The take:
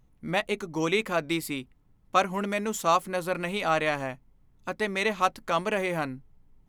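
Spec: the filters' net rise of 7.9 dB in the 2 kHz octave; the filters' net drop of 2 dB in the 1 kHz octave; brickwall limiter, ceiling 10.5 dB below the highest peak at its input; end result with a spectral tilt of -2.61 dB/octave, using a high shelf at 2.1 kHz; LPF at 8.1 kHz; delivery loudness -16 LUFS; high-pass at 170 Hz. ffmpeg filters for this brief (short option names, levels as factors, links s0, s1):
-af "highpass=170,lowpass=8100,equalizer=f=1000:t=o:g=-7,equalizer=f=2000:t=o:g=6.5,highshelf=f=2100:g=8,volume=3.98,alimiter=limit=0.75:level=0:latency=1"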